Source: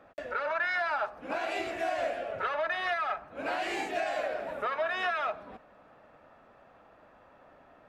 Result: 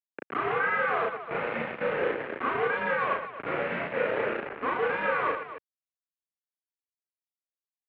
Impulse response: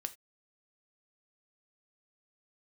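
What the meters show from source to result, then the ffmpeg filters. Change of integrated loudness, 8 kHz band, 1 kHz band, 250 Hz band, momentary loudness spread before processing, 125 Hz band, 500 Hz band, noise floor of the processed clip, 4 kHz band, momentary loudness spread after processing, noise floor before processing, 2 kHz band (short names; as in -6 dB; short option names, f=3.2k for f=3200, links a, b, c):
+3.0 dB, under -25 dB, +2.5 dB, +5.5 dB, 6 LU, +12.5 dB, +4.0 dB, under -85 dBFS, -4.0 dB, 6 LU, -59 dBFS, +3.0 dB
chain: -af "acrusher=bits=4:mix=0:aa=0.000001,aecho=1:1:34.99|116.6|265.3:0.891|0.447|0.316,highpass=f=330:t=q:w=0.5412,highpass=f=330:t=q:w=1.307,lowpass=f=2.6k:t=q:w=0.5176,lowpass=f=2.6k:t=q:w=0.7071,lowpass=f=2.6k:t=q:w=1.932,afreqshift=-170"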